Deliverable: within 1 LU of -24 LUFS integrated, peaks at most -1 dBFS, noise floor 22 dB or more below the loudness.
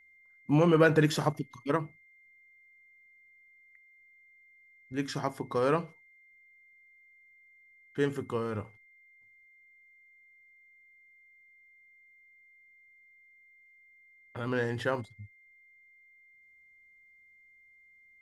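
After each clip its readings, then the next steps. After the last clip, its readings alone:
steady tone 2.1 kHz; tone level -58 dBFS; loudness -30.0 LUFS; peak level -11.5 dBFS; loudness target -24.0 LUFS
-> band-stop 2.1 kHz, Q 30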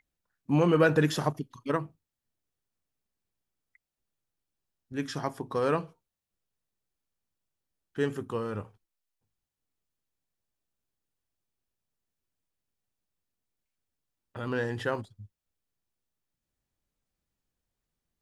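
steady tone not found; loudness -29.5 LUFS; peak level -11.0 dBFS; loudness target -24.0 LUFS
-> trim +5.5 dB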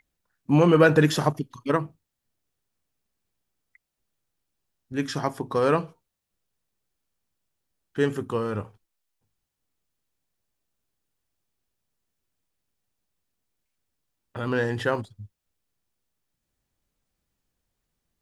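loudness -24.0 LUFS; peak level -5.5 dBFS; noise floor -82 dBFS

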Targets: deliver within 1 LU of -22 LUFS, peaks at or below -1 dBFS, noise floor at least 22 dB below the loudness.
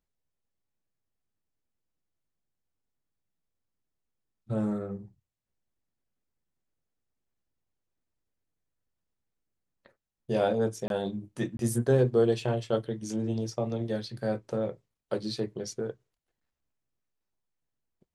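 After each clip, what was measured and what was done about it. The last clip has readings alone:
dropouts 2; longest dropout 22 ms; loudness -30.5 LUFS; peak level -13.0 dBFS; loudness target -22.0 LUFS
-> interpolate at 10.88/11.57 s, 22 ms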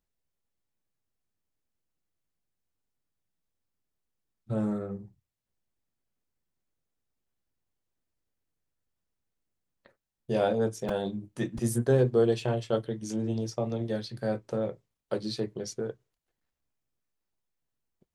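dropouts 0; loudness -30.5 LUFS; peak level -13.0 dBFS; loudness target -22.0 LUFS
-> trim +8.5 dB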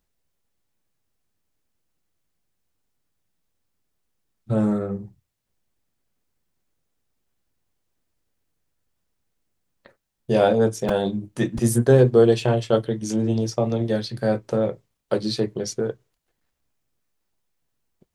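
loudness -22.0 LUFS; peak level -4.5 dBFS; noise floor -77 dBFS

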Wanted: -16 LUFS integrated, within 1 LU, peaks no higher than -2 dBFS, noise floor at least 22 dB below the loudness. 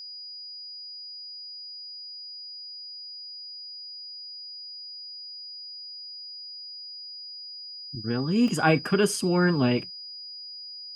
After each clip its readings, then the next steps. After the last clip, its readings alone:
dropouts 1; longest dropout 1.5 ms; steady tone 4.9 kHz; tone level -38 dBFS; loudness -30.5 LUFS; peak level -8.5 dBFS; loudness target -16.0 LUFS
-> interpolate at 8.48 s, 1.5 ms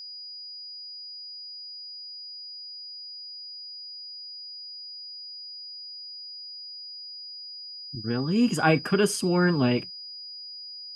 dropouts 0; steady tone 4.9 kHz; tone level -38 dBFS
-> band-stop 4.9 kHz, Q 30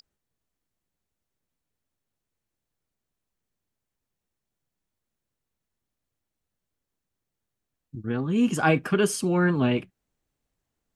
steady tone not found; loudness -24.0 LUFS; peak level -9.0 dBFS; loudness target -16.0 LUFS
-> trim +8 dB; peak limiter -2 dBFS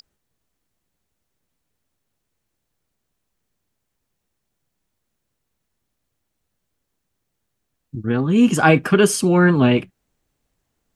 loudness -16.0 LUFS; peak level -2.0 dBFS; noise floor -77 dBFS

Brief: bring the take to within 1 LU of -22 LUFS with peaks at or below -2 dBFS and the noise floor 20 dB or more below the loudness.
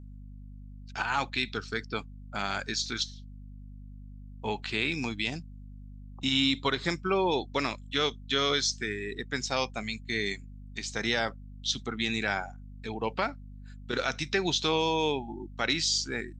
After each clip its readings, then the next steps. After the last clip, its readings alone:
hum 50 Hz; highest harmonic 250 Hz; hum level -43 dBFS; loudness -30.0 LUFS; peak level -12.0 dBFS; loudness target -22.0 LUFS
-> hum notches 50/100/150/200/250 Hz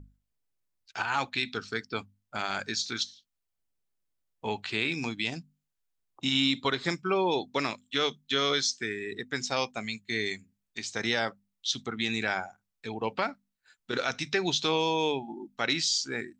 hum not found; loudness -30.0 LUFS; peak level -12.5 dBFS; loudness target -22.0 LUFS
-> trim +8 dB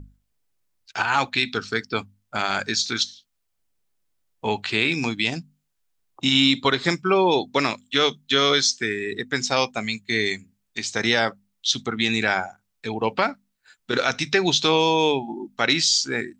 loudness -22.0 LUFS; peak level -4.5 dBFS; noise floor -74 dBFS

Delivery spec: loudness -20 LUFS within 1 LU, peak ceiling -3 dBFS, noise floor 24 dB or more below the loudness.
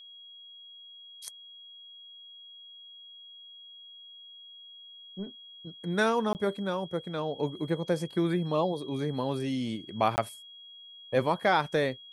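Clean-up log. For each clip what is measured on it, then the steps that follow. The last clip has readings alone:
dropouts 2; longest dropout 19 ms; steady tone 3.3 kHz; tone level -47 dBFS; loudness -30.0 LUFS; peak level -12.0 dBFS; loudness target -20.0 LUFS
-> interpolate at 6.33/10.16 s, 19 ms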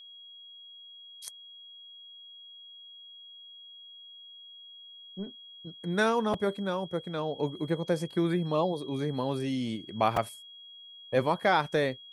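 dropouts 0; steady tone 3.3 kHz; tone level -47 dBFS
-> band-stop 3.3 kHz, Q 30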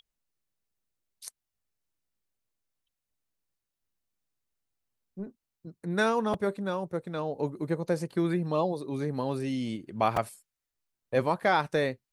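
steady tone not found; loudness -30.0 LUFS; peak level -12.0 dBFS; loudness target -20.0 LUFS
-> trim +10 dB; peak limiter -3 dBFS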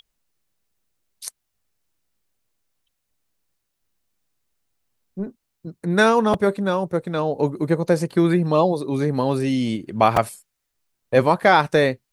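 loudness -20.0 LUFS; peak level -3.0 dBFS; noise floor -77 dBFS

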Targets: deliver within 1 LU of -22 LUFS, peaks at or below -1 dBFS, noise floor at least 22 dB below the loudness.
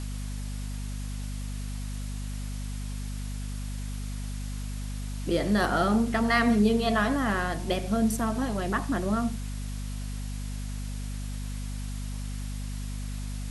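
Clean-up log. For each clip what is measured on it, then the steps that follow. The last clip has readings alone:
hum 50 Hz; highest harmonic 250 Hz; hum level -31 dBFS; noise floor -34 dBFS; noise floor target -52 dBFS; loudness -30.0 LUFS; peak level -11.5 dBFS; loudness target -22.0 LUFS
-> hum notches 50/100/150/200/250 Hz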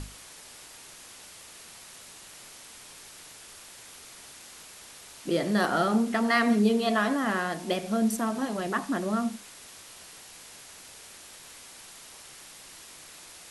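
hum not found; noise floor -48 dBFS; noise floor target -49 dBFS
-> noise reduction 6 dB, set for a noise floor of -48 dBFS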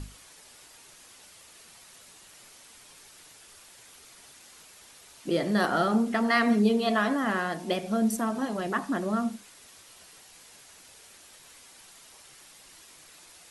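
noise floor -53 dBFS; loudness -26.5 LUFS; peak level -12.0 dBFS; loudness target -22.0 LUFS
-> trim +4.5 dB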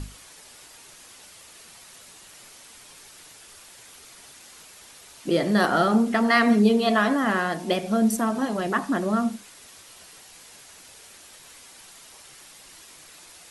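loudness -22.0 LUFS; peak level -7.5 dBFS; noise floor -49 dBFS

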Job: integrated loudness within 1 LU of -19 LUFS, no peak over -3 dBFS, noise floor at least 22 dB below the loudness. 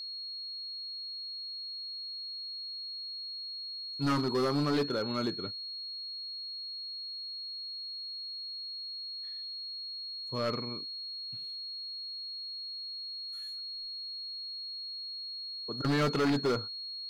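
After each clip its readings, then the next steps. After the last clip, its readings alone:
clipped samples 1.4%; clipping level -24.5 dBFS; steady tone 4.3 kHz; tone level -38 dBFS; loudness -35.0 LUFS; peak level -24.5 dBFS; loudness target -19.0 LUFS
-> clip repair -24.5 dBFS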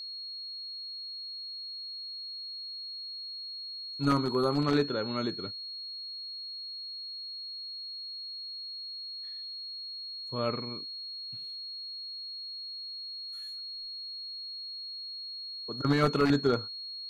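clipped samples 0.0%; steady tone 4.3 kHz; tone level -38 dBFS
-> band-stop 4.3 kHz, Q 30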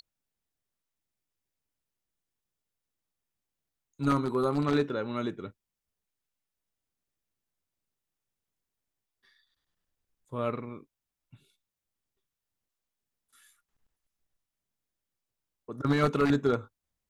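steady tone not found; loudness -29.5 LUFS; peak level -15.0 dBFS; loudness target -19.0 LUFS
-> trim +10.5 dB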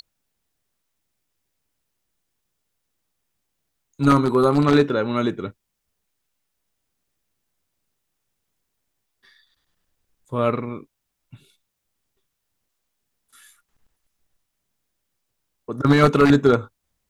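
loudness -19.0 LUFS; peak level -4.5 dBFS; noise floor -78 dBFS

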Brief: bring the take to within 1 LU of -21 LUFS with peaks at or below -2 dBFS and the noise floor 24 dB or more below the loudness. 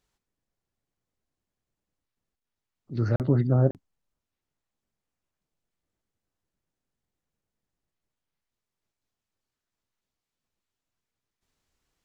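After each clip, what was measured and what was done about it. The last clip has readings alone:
dropouts 2; longest dropout 38 ms; loudness -25.0 LUFS; peak level -9.0 dBFS; loudness target -21.0 LUFS
-> interpolate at 3.16/3.71 s, 38 ms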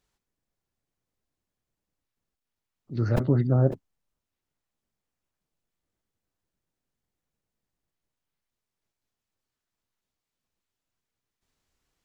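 dropouts 0; loudness -24.5 LUFS; peak level -9.0 dBFS; loudness target -21.0 LUFS
-> trim +3.5 dB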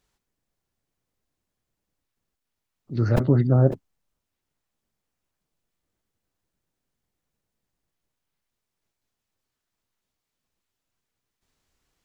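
loudness -21.0 LUFS; peak level -5.5 dBFS; noise floor -84 dBFS

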